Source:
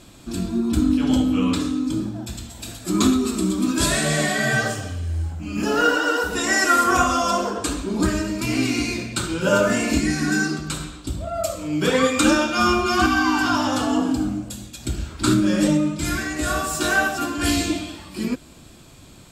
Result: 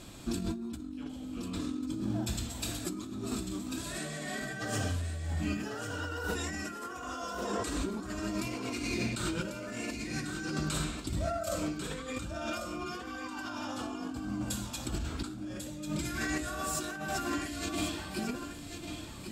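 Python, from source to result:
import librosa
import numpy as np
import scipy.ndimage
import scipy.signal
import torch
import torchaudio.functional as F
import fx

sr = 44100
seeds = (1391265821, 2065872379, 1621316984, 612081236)

y = fx.over_compress(x, sr, threshold_db=-29.0, ratio=-1.0)
y = y + 10.0 ** (-8.0 / 20.0) * np.pad(y, (int(1094 * sr / 1000.0), 0))[:len(y)]
y = y * librosa.db_to_amplitude(-8.5)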